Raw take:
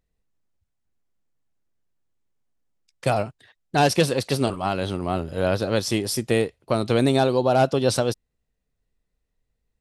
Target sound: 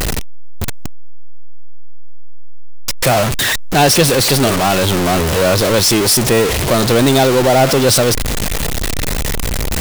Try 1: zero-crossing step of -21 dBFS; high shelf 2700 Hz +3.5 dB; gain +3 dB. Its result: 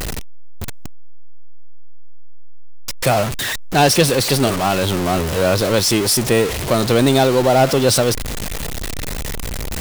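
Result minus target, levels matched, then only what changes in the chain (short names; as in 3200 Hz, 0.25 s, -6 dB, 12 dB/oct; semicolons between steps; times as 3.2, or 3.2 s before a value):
zero-crossing step: distortion -5 dB
change: zero-crossing step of -14 dBFS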